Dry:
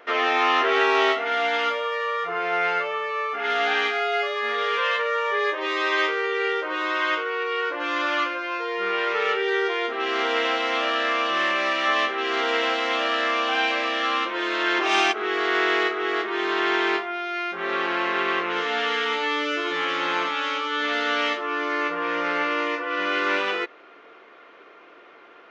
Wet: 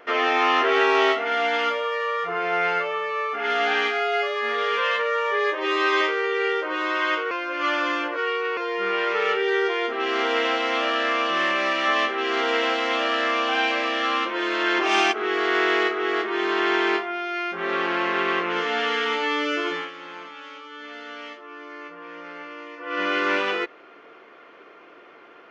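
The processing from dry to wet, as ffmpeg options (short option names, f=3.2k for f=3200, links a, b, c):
-filter_complex "[0:a]asettb=1/sr,asplit=3[a][b][c];[a]atrim=end=5.604[d];[b]atrim=start=5.6:end=6.01,asetpts=PTS-STARTPTS,afade=t=in:d=0.004:c=qsin,afade=t=out:st=0.406:d=0.004:c=qsin,asplit=2[e][f];[f]adelay=41,volume=-4.5dB[g];[e][g]amix=inputs=2:normalize=0,atrim=end_sample=18081[h];[c]atrim=start=6.006[i];[d][h]acrossfade=d=0.004:c1=hsin:c2=qsin[j];[j][i]acrossfade=d=0.004:c1=qsin:c2=hsin,asplit=5[k][l][m][n][o];[k]atrim=end=7.312[p];[l]atrim=start=7.308:end=8.572,asetpts=PTS-STARTPTS,areverse[q];[m]atrim=start=8.568:end=19.91,asetpts=PTS-STARTPTS,afade=t=out:st=11.102:d=0.24:silence=0.188365[r];[n]atrim=start=19.91:end=22.76,asetpts=PTS-STARTPTS,volume=-14.5dB[s];[o]atrim=start=22.76,asetpts=PTS-STARTPTS,afade=t=in:d=0.24:silence=0.188365[t];[p][q]acrossfade=d=0.004:c1=hsin:c2=hsin[u];[r][s][t]concat=n=3:v=0:a=1[v];[u][v]acrossfade=d=0.004:c1=hsin:c2=hsin,lowshelf=f=230:g=7,bandreject=f=3.8k:w=16"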